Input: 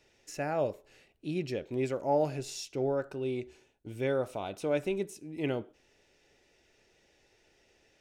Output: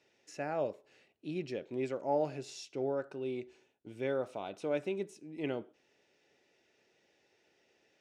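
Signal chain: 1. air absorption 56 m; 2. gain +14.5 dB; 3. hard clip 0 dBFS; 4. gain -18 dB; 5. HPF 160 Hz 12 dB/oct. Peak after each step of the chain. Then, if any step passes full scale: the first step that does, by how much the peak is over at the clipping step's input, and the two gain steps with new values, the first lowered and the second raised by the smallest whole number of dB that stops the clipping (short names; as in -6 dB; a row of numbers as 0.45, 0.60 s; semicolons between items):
-17.5, -3.0, -3.0, -21.0, -20.5 dBFS; no overload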